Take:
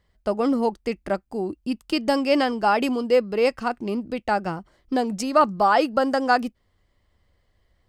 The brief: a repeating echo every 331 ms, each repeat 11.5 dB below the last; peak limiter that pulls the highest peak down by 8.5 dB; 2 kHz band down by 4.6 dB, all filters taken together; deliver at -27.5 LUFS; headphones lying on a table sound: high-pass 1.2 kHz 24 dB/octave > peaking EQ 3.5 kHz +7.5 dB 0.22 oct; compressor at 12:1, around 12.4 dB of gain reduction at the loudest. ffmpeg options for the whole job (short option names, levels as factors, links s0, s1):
-af "equalizer=f=2000:t=o:g=-6.5,acompressor=threshold=0.0501:ratio=12,alimiter=level_in=1.06:limit=0.0631:level=0:latency=1,volume=0.944,highpass=f=1200:w=0.5412,highpass=f=1200:w=1.3066,equalizer=f=3500:t=o:w=0.22:g=7.5,aecho=1:1:331|662|993:0.266|0.0718|0.0194,volume=7.94"